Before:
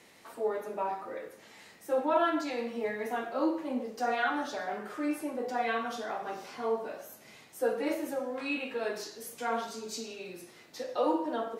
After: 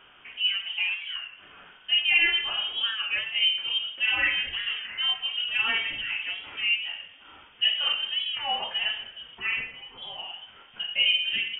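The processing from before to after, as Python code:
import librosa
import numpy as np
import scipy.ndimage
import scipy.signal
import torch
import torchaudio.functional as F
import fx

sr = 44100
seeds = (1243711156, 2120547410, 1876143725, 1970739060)

y = fx.highpass(x, sr, hz=620.0, slope=12, at=(9.39, 10.03))
y = fx.freq_invert(y, sr, carrier_hz=3400)
y = fx.record_warp(y, sr, rpm=33.33, depth_cents=100.0)
y = y * librosa.db_to_amplitude(5.0)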